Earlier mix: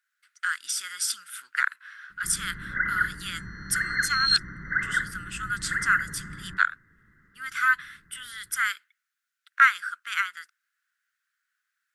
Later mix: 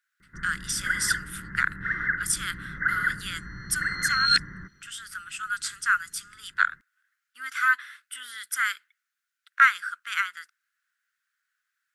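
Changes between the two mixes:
first sound: entry −1.90 s
second sound: remove Butterworth high-pass 2,800 Hz

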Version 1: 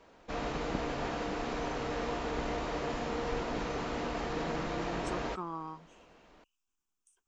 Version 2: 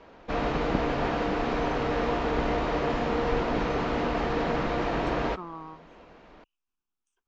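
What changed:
background +8.5 dB
master: add high-frequency loss of the air 150 metres

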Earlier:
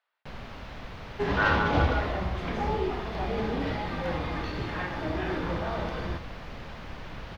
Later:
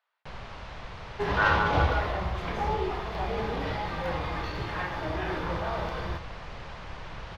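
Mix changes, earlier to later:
first sound: add low-pass filter 8,800 Hz 24 dB per octave
master: add graphic EQ with 15 bands 250 Hz −8 dB, 1,000 Hz +3 dB, 16,000 Hz +10 dB

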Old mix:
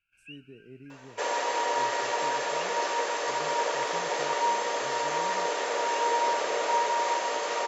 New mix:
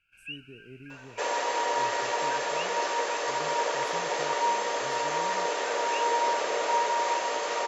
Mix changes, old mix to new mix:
speech: remove band-pass filter 120–7,000 Hz
first sound +8.0 dB

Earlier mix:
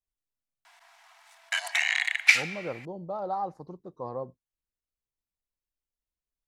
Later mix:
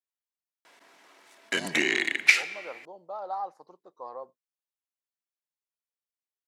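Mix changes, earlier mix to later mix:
background: remove Butterworth high-pass 680 Hz 96 dB per octave
master: add high-pass filter 680 Hz 12 dB per octave

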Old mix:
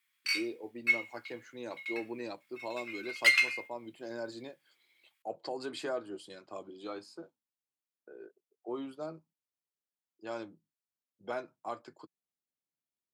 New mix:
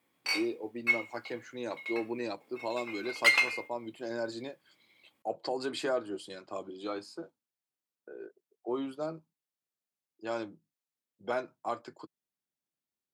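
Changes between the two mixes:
speech +4.5 dB
background: remove inverse Chebyshev high-pass filter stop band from 560 Hz, stop band 50 dB

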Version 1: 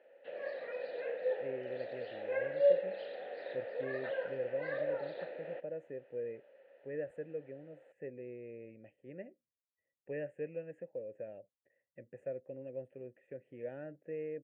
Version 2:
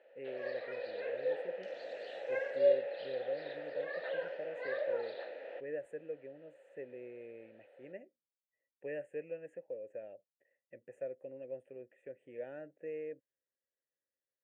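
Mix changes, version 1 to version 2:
speech: entry −1.25 s
second sound +11.5 dB
master: add bass and treble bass −10 dB, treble +9 dB

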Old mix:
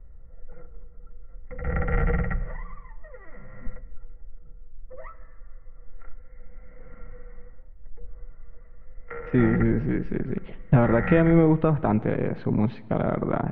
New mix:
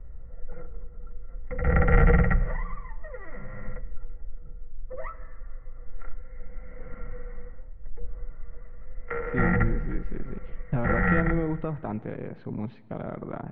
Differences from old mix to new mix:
speech −10.0 dB
background +5.0 dB

